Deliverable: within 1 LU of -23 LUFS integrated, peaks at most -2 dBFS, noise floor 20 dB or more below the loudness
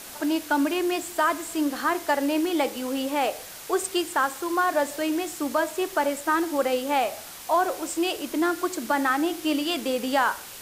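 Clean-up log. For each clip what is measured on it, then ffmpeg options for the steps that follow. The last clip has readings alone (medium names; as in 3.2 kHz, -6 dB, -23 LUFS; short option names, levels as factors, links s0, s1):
noise floor -41 dBFS; noise floor target -46 dBFS; loudness -25.5 LUFS; peak level -11.5 dBFS; loudness target -23.0 LUFS
-> -af "afftdn=nr=6:nf=-41"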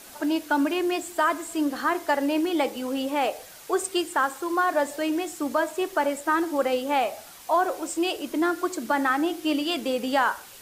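noise floor -46 dBFS; loudness -25.5 LUFS; peak level -11.5 dBFS; loudness target -23.0 LUFS
-> -af "volume=1.33"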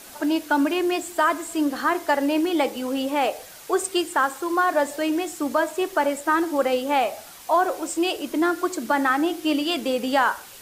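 loudness -23.0 LUFS; peak level -9.0 dBFS; noise floor -44 dBFS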